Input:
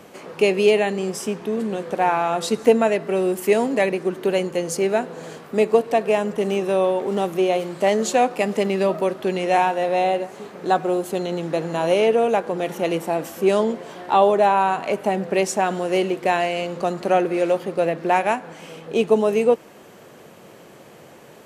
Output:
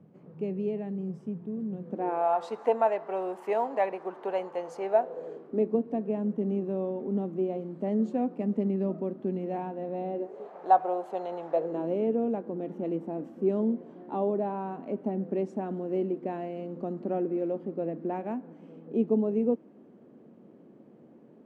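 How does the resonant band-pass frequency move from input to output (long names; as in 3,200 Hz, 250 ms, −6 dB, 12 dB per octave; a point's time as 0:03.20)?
resonant band-pass, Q 2.7
0:01.80 150 Hz
0:02.35 850 Hz
0:04.84 850 Hz
0:05.74 230 Hz
0:10.10 230 Hz
0:10.56 780 Hz
0:11.49 780 Hz
0:11.89 250 Hz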